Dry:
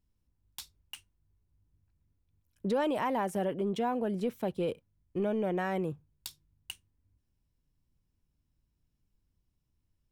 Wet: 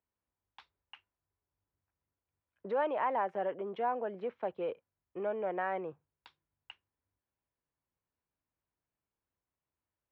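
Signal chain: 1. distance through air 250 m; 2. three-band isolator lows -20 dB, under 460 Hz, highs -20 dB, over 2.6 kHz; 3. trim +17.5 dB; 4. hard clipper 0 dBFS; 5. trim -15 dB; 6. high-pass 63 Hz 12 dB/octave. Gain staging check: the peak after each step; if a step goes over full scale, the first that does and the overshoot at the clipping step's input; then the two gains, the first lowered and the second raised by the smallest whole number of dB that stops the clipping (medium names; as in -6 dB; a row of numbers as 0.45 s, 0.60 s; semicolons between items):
-22.0 dBFS, -23.5 dBFS, -6.0 dBFS, -6.0 dBFS, -21.0 dBFS, -21.0 dBFS; nothing clips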